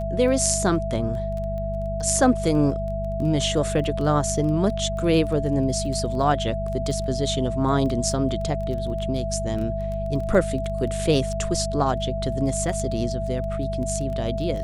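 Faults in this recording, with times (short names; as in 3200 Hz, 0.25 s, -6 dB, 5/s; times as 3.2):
crackle 13/s -30 dBFS
hum 50 Hz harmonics 4 -29 dBFS
tone 660 Hz -28 dBFS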